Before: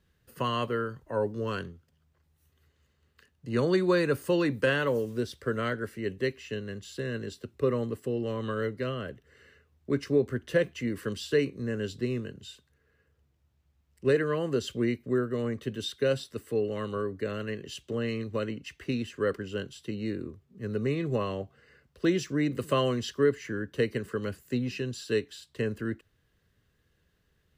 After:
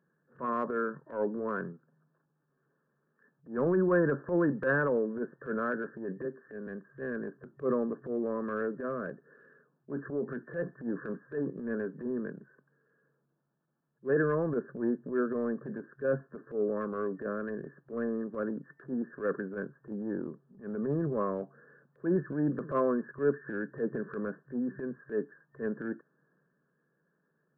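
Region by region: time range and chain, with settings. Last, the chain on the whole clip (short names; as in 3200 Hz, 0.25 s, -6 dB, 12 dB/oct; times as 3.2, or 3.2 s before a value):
6.25–6.67 HPF 150 Hz 24 dB/oct + compressor 2:1, threshold -37 dBFS
8.7–12.11 compressor, threshold -25 dBFS + doubler 17 ms -14 dB
whole clip: FFT band-pass 130–1800 Hz; notch 760 Hz, Q 12; transient shaper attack -11 dB, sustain +4 dB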